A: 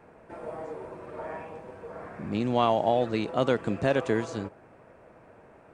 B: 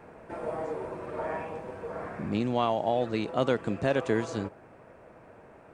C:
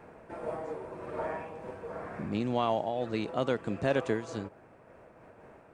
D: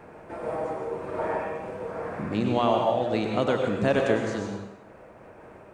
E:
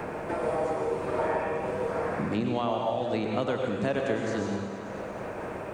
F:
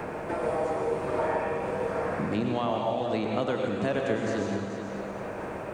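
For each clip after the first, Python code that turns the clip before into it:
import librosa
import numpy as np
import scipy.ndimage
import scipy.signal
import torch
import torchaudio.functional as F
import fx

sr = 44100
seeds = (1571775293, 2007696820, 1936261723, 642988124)

y1 = fx.rider(x, sr, range_db=4, speed_s=0.5)
y2 = fx.am_noise(y1, sr, seeds[0], hz=5.7, depth_pct=65)
y3 = fx.rev_plate(y2, sr, seeds[1], rt60_s=0.82, hf_ratio=0.95, predelay_ms=85, drr_db=2.0)
y3 = y3 * 10.0 ** (4.5 / 20.0)
y4 = fx.rider(y3, sr, range_db=3, speed_s=0.5)
y4 = fx.echo_feedback(y4, sr, ms=223, feedback_pct=54, wet_db=-17.0)
y4 = fx.band_squash(y4, sr, depth_pct=70)
y4 = y4 * 10.0 ** (-2.0 / 20.0)
y5 = y4 + 10.0 ** (-10.5 / 20.0) * np.pad(y4, (int(431 * sr / 1000.0), 0))[:len(y4)]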